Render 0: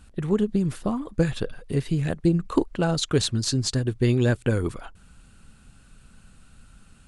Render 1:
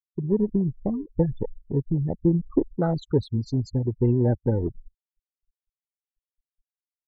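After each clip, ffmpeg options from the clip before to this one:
-af "afftfilt=real='re*gte(hypot(re,im),0.1)':imag='im*gte(hypot(re,im),0.1)':win_size=1024:overlap=0.75,afwtdn=0.0501"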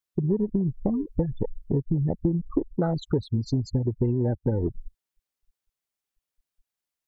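-af "acompressor=threshold=-29dB:ratio=6,volume=7.5dB"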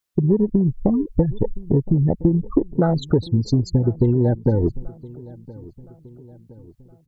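-filter_complex "[0:a]asplit=2[a][b];[b]adelay=1017,lowpass=f=2.4k:p=1,volume=-21dB,asplit=2[c][d];[d]adelay=1017,lowpass=f=2.4k:p=1,volume=0.52,asplit=2[e][f];[f]adelay=1017,lowpass=f=2.4k:p=1,volume=0.52,asplit=2[g][h];[h]adelay=1017,lowpass=f=2.4k:p=1,volume=0.52[i];[a][c][e][g][i]amix=inputs=5:normalize=0,volume=7dB"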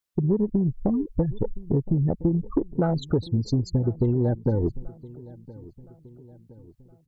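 -af "asoftclip=type=tanh:threshold=-5.5dB,volume=-4.5dB"

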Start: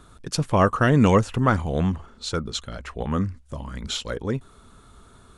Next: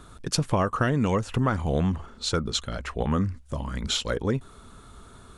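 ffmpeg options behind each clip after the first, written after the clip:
-af "acompressor=threshold=-22dB:ratio=12,volume=2.5dB"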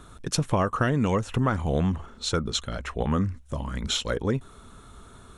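-af "bandreject=f=4.7k:w=9.6"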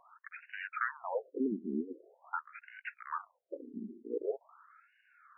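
-af "aeval=exprs='0.251*(cos(1*acos(clip(val(0)/0.251,-1,1)))-cos(1*PI/2))+0.0398*(cos(4*acos(clip(val(0)/0.251,-1,1)))-cos(4*PI/2))':c=same,afftfilt=real='re*between(b*sr/1024,280*pow(2100/280,0.5+0.5*sin(2*PI*0.45*pts/sr))/1.41,280*pow(2100/280,0.5+0.5*sin(2*PI*0.45*pts/sr))*1.41)':imag='im*between(b*sr/1024,280*pow(2100/280,0.5+0.5*sin(2*PI*0.45*pts/sr))/1.41,280*pow(2100/280,0.5+0.5*sin(2*PI*0.45*pts/sr))*1.41)':win_size=1024:overlap=0.75,volume=-4dB"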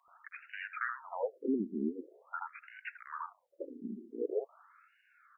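-filter_complex "[0:a]acrossover=split=1200[a][b];[a]adelay=80[c];[c][b]amix=inputs=2:normalize=0,volume=1dB"

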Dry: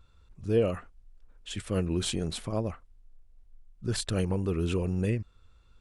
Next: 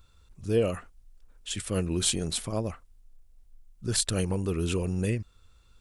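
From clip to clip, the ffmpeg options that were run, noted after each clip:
-af "highshelf=f=4.7k:g=12"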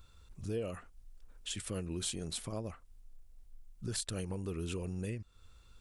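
-af "acompressor=threshold=-40dB:ratio=2.5"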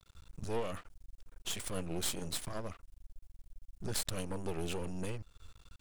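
-af "aeval=exprs='max(val(0),0)':c=same,volume=6dB"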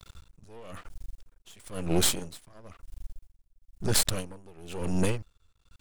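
-filter_complex "[0:a]asplit=2[a][b];[b]alimiter=level_in=1dB:limit=-24dB:level=0:latency=1:release=142,volume=-1dB,volume=-1dB[c];[a][c]amix=inputs=2:normalize=0,aeval=exprs='val(0)*pow(10,-27*(0.5-0.5*cos(2*PI*1*n/s))/20)':c=same,volume=8.5dB"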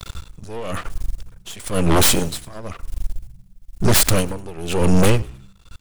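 -filter_complex "[0:a]aeval=exprs='0.473*sin(PI/2*4.47*val(0)/0.473)':c=same,asplit=4[a][b][c][d];[b]adelay=100,afreqshift=-65,volume=-22dB[e];[c]adelay=200,afreqshift=-130,volume=-30.2dB[f];[d]adelay=300,afreqshift=-195,volume=-38.4dB[g];[a][e][f][g]amix=inputs=4:normalize=0"

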